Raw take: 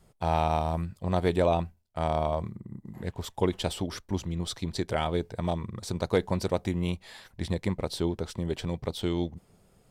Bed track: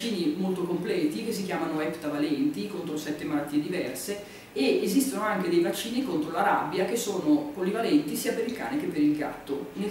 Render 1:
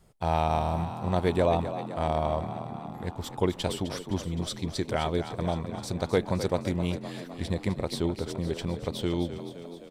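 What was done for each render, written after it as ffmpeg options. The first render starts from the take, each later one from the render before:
-filter_complex "[0:a]asplit=9[s0][s1][s2][s3][s4][s5][s6][s7][s8];[s1]adelay=258,afreqshift=41,volume=0.282[s9];[s2]adelay=516,afreqshift=82,volume=0.18[s10];[s3]adelay=774,afreqshift=123,volume=0.115[s11];[s4]adelay=1032,afreqshift=164,volume=0.0741[s12];[s5]adelay=1290,afreqshift=205,volume=0.0473[s13];[s6]adelay=1548,afreqshift=246,volume=0.0302[s14];[s7]adelay=1806,afreqshift=287,volume=0.0193[s15];[s8]adelay=2064,afreqshift=328,volume=0.0124[s16];[s0][s9][s10][s11][s12][s13][s14][s15][s16]amix=inputs=9:normalize=0"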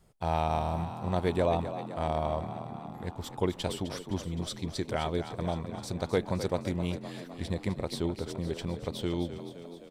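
-af "volume=0.708"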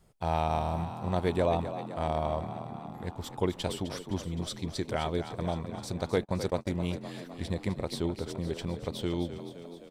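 -filter_complex "[0:a]asettb=1/sr,asplit=3[s0][s1][s2];[s0]atrim=end=6.164[s3];[s1]atrim=start=6.16:end=6.79,asetpts=PTS-STARTPTS,afade=t=in:d=0.004:c=qsin,afade=t=out:st=0.626:d=0.004:c=qsin,agate=range=0.0112:threshold=0.0141:ratio=16:release=100:detection=peak[s4];[s2]atrim=start=6.786[s5];[s3][s4]acrossfade=d=0.004:c1=hsin:c2=qsin[s6];[s6][s5]acrossfade=d=0.004:c1=qsin:c2=hsin"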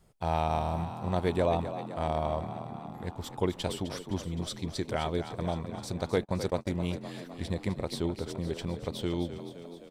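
-af anull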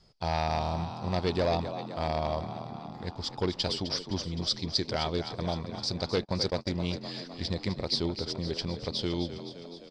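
-af "volume=11.2,asoftclip=hard,volume=0.0891,lowpass=f=4900:t=q:w=8.6"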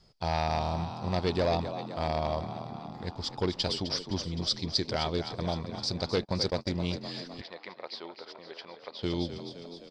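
-filter_complex "[0:a]asplit=3[s0][s1][s2];[s0]afade=t=out:st=7.4:d=0.02[s3];[s1]highpass=740,lowpass=2300,afade=t=in:st=7.4:d=0.02,afade=t=out:st=9.02:d=0.02[s4];[s2]afade=t=in:st=9.02:d=0.02[s5];[s3][s4][s5]amix=inputs=3:normalize=0"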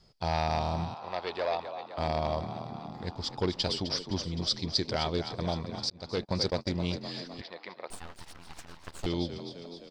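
-filter_complex "[0:a]asettb=1/sr,asplit=3[s0][s1][s2];[s0]atrim=end=0.944[s3];[s1]atrim=start=0.94:end=1.98,asetpts=PTS-STARTPTS,afade=t=in:d=0.004:c=qsin,afade=t=out:st=1.036:d=0.004:c=qsin,acrossover=split=470 3900:gain=0.0891 1 0.224[s4][s5][s6];[s4][s5][s6]amix=inputs=3:normalize=0[s7];[s2]atrim=start=1.976[s8];[s3][s7]acrossfade=d=0.004:c1=hsin:c2=qsin[s9];[s9][s8]acrossfade=d=0.004:c1=qsin:c2=hsin,asettb=1/sr,asplit=3[s10][s11][s12];[s10]atrim=end=7.904[s13];[s11]atrim=start=7.9:end=9.06,asetpts=PTS-STARTPTS,afade=t=in:d=0.004:c=qsin,afade=t=out:st=1.156:d=0.004:c=qsin,aeval=exprs='abs(val(0))':c=same[s14];[s12]atrim=start=9.056[s15];[s13][s14]acrossfade=d=0.004:c1=hsin:c2=qsin[s16];[s16][s15]acrossfade=d=0.004:c1=qsin:c2=hsin,asplit=2[s17][s18];[s17]atrim=end=5.9,asetpts=PTS-STARTPTS,afade=t=out:st=5.896:d=0.004:c=hsin[s19];[s18]atrim=start=5.9,asetpts=PTS-STARTPTS,afade=t=in:d=0.4[s20];[s19][s20]concat=n=2:v=0:a=1"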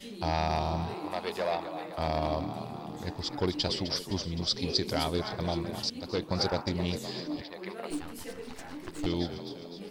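-filter_complex "[1:a]volume=0.2[s0];[0:a][s0]amix=inputs=2:normalize=0"

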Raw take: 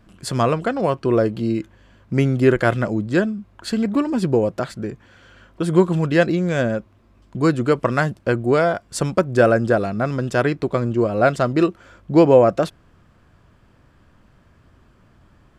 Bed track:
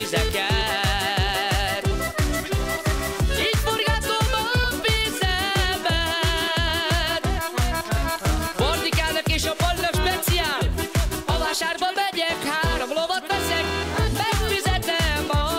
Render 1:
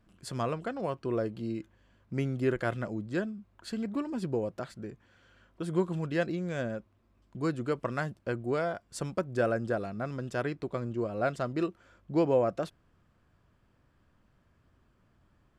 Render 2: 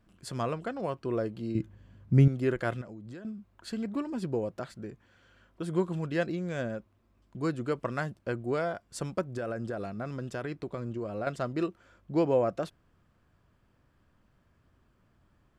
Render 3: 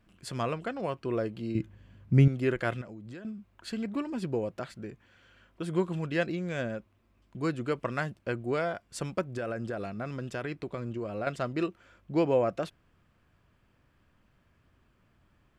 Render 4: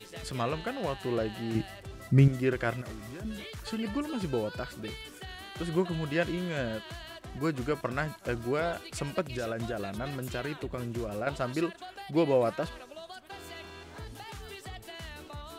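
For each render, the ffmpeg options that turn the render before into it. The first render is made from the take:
-af "volume=0.211"
-filter_complex "[0:a]asettb=1/sr,asplit=3[s0][s1][s2];[s0]atrim=end=1.554[s3];[s1]atrim=start=1.55:end=2.28,asetpts=PTS-STARTPTS,afade=t=in:d=0.004:c=qsin,afade=t=out:st=0.726:d=0.004:c=qsin,equalizer=f=110:t=o:w=2.6:g=15[s4];[s2]atrim=start=2.276[s5];[s3][s4]acrossfade=d=0.004:c1=hsin:c2=qsin[s6];[s6][s5]acrossfade=d=0.004:c1=qsin:c2=hsin,asettb=1/sr,asplit=3[s7][s8][s9];[s7]atrim=end=2.814[s10];[s8]atrim=start=2.81:end=3.25,asetpts=PTS-STARTPTS,afade=t=in:d=0.004:c=qsin,afade=t=out:st=0.436:d=0.004:c=qsin,acompressor=threshold=0.01:ratio=20:attack=3.2:release=140:knee=1:detection=peak[s11];[s9]atrim=start=3.246[s12];[s10][s11]acrossfade=d=0.004:c1=hsin:c2=qsin[s13];[s13][s12]acrossfade=d=0.004:c1=qsin:c2=hsin,asettb=1/sr,asplit=3[s14][s15][s16];[s14]atrim=end=9.264[s17];[s15]atrim=start=9.26:end=11.27,asetpts=PTS-STARTPTS,afade=t=in:d=0.004:c=qsin,afade=t=out:st=2.006:d=0.004:c=qsin,acompressor=threshold=0.0316:ratio=10:attack=3.2:release=140:knee=1:detection=peak[s18];[s16]atrim=start=11.266[s19];[s17][s18]acrossfade=d=0.004:c1=hsin:c2=qsin[s20];[s20][s19]acrossfade=d=0.004:c1=qsin:c2=hsin"
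-af "equalizer=f=2500:w=1.4:g=5.5"
-filter_complex "[1:a]volume=0.0841[s0];[0:a][s0]amix=inputs=2:normalize=0"

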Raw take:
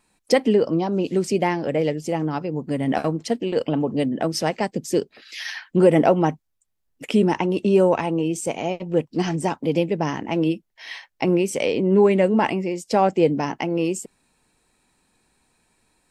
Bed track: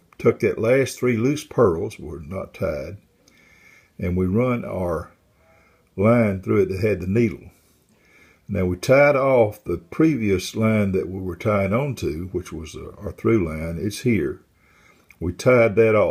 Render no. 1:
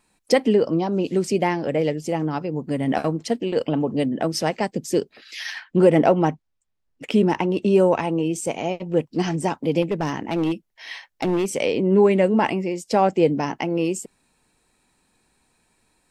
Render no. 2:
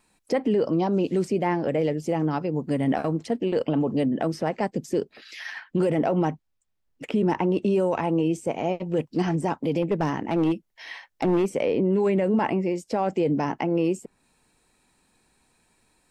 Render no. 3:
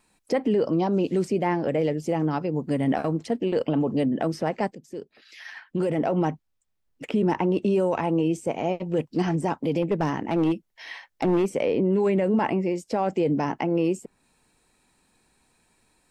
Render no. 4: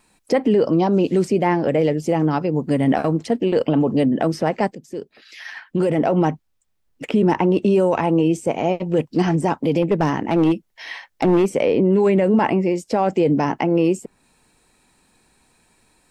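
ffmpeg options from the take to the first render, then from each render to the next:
-filter_complex "[0:a]asettb=1/sr,asplit=3[s0][s1][s2];[s0]atrim=end=5.514[s3];[s1]atrim=start=5.51:end=7.62,asetpts=PTS-STARTPTS,afade=t=in:d=0.004:c=qsin,afade=t=out:st=2.106:d=0.004:c=qsin,adynamicsmooth=sensitivity=6:basefreq=6100[s4];[s2]atrim=start=7.616[s5];[s3][s4]acrossfade=d=0.004:c1=hsin:c2=qsin[s6];[s6][s5]acrossfade=d=0.004:c1=qsin:c2=hsin,asettb=1/sr,asplit=3[s7][s8][s9];[s7]atrim=end=9.824[s10];[s8]atrim=start=9.82:end=11.54,asetpts=PTS-STARTPTS,afade=t=in:d=0.004:c=qsin,afade=t=out:st=1.716:d=0.004:c=qsin,volume=7.5,asoftclip=hard,volume=0.133[s11];[s9]atrim=start=11.536[s12];[s10][s11]acrossfade=d=0.004:c1=hsin:c2=qsin[s13];[s13][s12]acrossfade=d=0.004:c1=qsin:c2=hsin"
-filter_complex "[0:a]acrossover=split=2000[s0][s1];[s0]alimiter=limit=0.178:level=0:latency=1:release=25[s2];[s1]acompressor=threshold=0.00631:ratio=6[s3];[s2][s3]amix=inputs=2:normalize=0"
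-filter_complex "[0:a]asplit=2[s0][s1];[s0]atrim=end=4.75,asetpts=PTS-STARTPTS,afade=t=out:st=4.746:d=0.004:c=hsin:silence=0.16788[s2];[s1]atrim=start=4.75,asetpts=PTS-STARTPTS,afade=t=in:d=1.55:silence=0.16788[s3];[s2][s3]concat=n=2:v=0:a=1"
-af "volume=2"

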